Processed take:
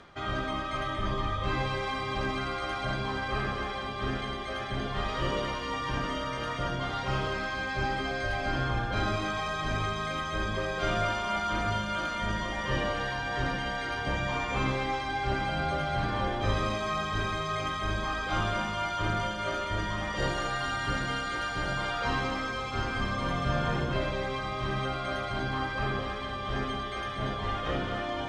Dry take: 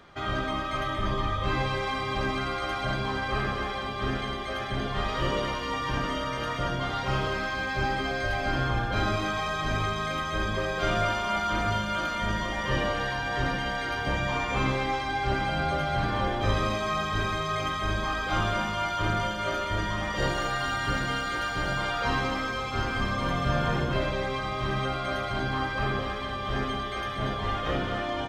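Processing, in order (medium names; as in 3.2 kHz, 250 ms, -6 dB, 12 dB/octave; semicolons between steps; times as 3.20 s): low-pass 11 kHz 24 dB/octave; reverse; upward compressor, threshold -32 dBFS; reverse; trim -2.5 dB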